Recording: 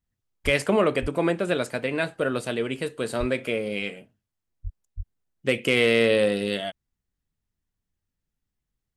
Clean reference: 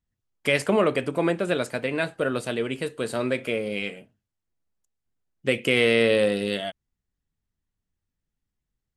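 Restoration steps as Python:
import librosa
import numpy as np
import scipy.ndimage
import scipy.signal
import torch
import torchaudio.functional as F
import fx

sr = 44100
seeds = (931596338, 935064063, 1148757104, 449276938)

y = fx.fix_declip(x, sr, threshold_db=-9.0)
y = fx.fix_deplosive(y, sr, at_s=(0.44, 1.01, 3.19, 4.63, 4.96))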